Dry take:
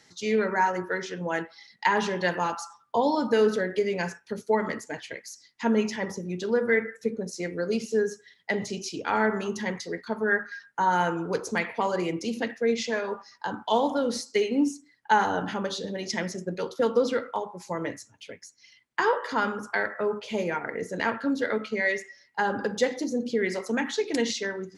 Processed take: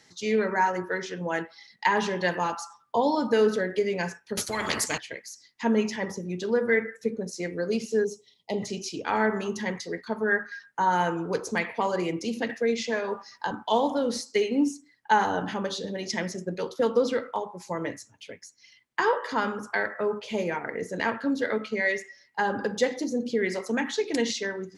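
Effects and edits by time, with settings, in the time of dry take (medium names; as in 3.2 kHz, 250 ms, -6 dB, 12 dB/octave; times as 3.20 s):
4.37–4.98 s: spectrum-flattening compressor 4:1
8.04–8.63 s: Butterworth band-stop 1.6 kHz, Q 1
12.49–13.51 s: three bands compressed up and down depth 40%
whole clip: band-stop 1.4 kHz, Q 23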